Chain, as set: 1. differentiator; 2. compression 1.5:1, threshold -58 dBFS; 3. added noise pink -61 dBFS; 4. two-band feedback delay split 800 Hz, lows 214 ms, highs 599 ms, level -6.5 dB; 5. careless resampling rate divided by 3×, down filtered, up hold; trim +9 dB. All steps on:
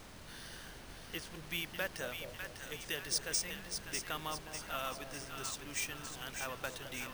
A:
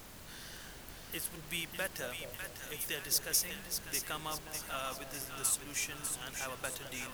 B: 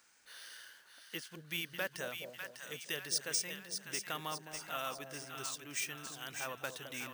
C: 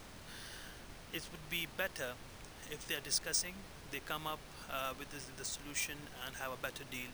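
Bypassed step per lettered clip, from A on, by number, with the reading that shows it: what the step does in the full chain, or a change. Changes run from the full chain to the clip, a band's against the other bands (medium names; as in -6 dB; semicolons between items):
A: 5, 8 kHz band +5.0 dB; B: 3, 125 Hz band -2.5 dB; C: 4, momentary loudness spread change +2 LU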